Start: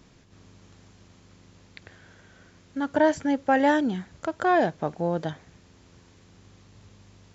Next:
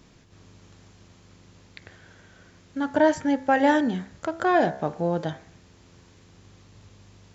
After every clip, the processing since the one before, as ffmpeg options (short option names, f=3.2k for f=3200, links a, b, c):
-af "bandreject=f=65.89:t=h:w=4,bandreject=f=131.78:t=h:w=4,bandreject=f=197.67:t=h:w=4,bandreject=f=263.56:t=h:w=4,bandreject=f=329.45:t=h:w=4,bandreject=f=395.34:t=h:w=4,bandreject=f=461.23:t=h:w=4,bandreject=f=527.12:t=h:w=4,bandreject=f=593.01:t=h:w=4,bandreject=f=658.9:t=h:w=4,bandreject=f=724.79:t=h:w=4,bandreject=f=790.68:t=h:w=4,bandreject=f=856.57:t=h:w=4,bandreject=f=922.46:t=h:w=4,bandreject=f=988.35:t=h:w=4,bandreject=f=1.05424k:t=h:w=4,bandreject=f=1.12013k:t=h:w=4,bandreject=f=1.18602k:t=h:w=4,bandreject=f=1.25191k:t=h:w=4,bandreject=f=1.3178k:t=h:w=4,bandreject=f=1.38369k:t=h:w=4,bandreject=f=1.44958k:t=h:w=4,bandreject=f=1.51547k:t=h:w=4,bandreject=f=1.58136k:t=h:w=4,bandreject=f=1.64725k:t=h:w=4,bandreject=f=1.71314k:t=h:w=4,bandreject=f=1.77903k:t=h:w=4,bandreject=f=1.84492k:t=h:w=4,bandreject=f=1.91081k:t=h:w=4,bandreject=f=1.9767k:t=h:w=4,bandreject=f=2.04259k:t=h:w=4,bandreject=f=2.10848k:t=h:w=4,bandreject=f=2.17437k:t=h:w=4,bandreject=f=2.24026k:t=h:w=4,volume=1.5dB"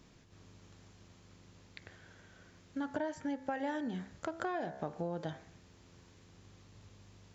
-af "acompressor=threshold=-27dB:ratio=10,volume=-6.5dB"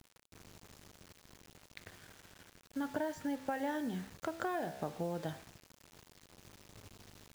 -af "acrusher=bits=8:mix=0:aa=0.000001"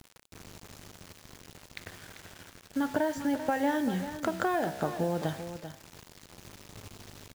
-af "aecho=1:1:392:0.282,volume=8dB"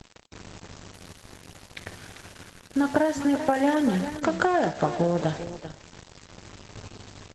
-af "volume=7dB" -ar 48000 -c:a libopus -b:a 12k